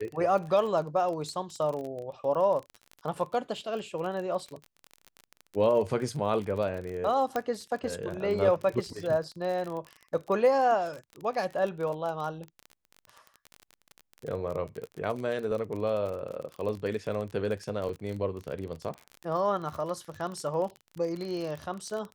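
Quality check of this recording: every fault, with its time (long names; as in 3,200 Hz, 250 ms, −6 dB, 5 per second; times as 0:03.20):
surface crackle 32 per second −34 dBFS
0:07.36: click −16 dBFS
0:17.89: drop-out 3.5 ms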